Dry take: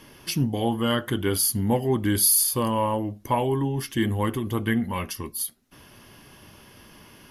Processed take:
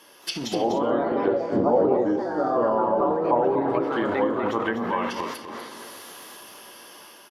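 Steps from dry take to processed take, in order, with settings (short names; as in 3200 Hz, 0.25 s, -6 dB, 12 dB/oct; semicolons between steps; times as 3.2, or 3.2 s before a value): bell 2200 Hz -6 dB 0.66 oct; echoes that change speed 0.22 s, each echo +3 st, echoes 3; HPF 490 Hz 12 dB/oct; reverb, pre-delay 3 ms, DRR 6 dB; transient shaper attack +3 dB, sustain +8 dB; 1.03–3.17 LPF 7500 Hz 24 dB/oct; AGC gain up to 6 dB; treble ducked by the level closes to 650 Hz, closed at -17 dBFS; echo 0.247 s -8.5 dB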